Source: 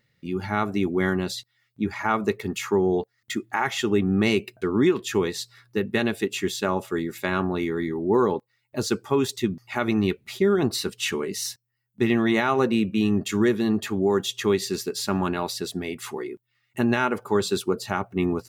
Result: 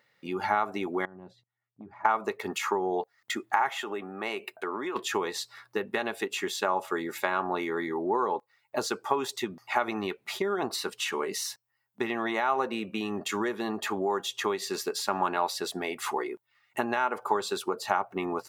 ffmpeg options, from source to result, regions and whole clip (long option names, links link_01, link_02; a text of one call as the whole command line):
ffmpeg -i in.wav -filter_complex "[0:a]asettb=1/sr,asplit=3[link_01][link_02][link_03];[link_01]atrim=end=1.054[link_04];[link_02]atrim=start=1.05:end=2.05,asetpts=PTS-STARTPTS,afade=type=in:duration=0.004:curve=qsin,afade=type=out:start_time=0.996:duration=0.004:curve=qsin,bandpass=frequency=120:width_type=q:width=1.1,acompressor=threshold=-35dB:ratio=6:attack=3.2:release=140:knee=1:detection=peak[link_05];[link_03]atrim=start=2.046[link_06];[link_04][link_05]acrossfade=duration=0.004:curve1=hsin:curve2=qsin[link_07];[link_07][link_06]acrossfade=duration=0.004:curve1=qsin:curve2=hsin,asettb=1/sr,asplit=3[link_08][link_09][link_10];[link_08]atrim=end=3.694[link_11];[link_09]atrim=start=3.69:end=4.96,asetpts=PTS-STARTPTS,afade=type=in:duration=0.004:curve=qsin,afade=type=out:start_time=1.266:duration=0.004:curve=qsin,equalizer=frequency=5400:width_type=o:width=0.92:gain=-7.5,acompressor=threshold=-28dB:ratio=3:attack=3.2:release=140:knee=1:detection=peak,highpass=frequency=380:poles=1[link_12];[link_10]atrim=start=4.956[link_13];[link_11][link_12]acrossfade=duration=0.004:curve1=hsin:curve2=qsin[link_14];[link_14][link_13]acrossfade=duration=0.004:curve1=qsin:curve2=hsin,highpass=frequency=560:poles=1,acompressor=threshold=-31dB:ratio=6,equalizer=frequency=850:width=0.79:gain=12" out.wav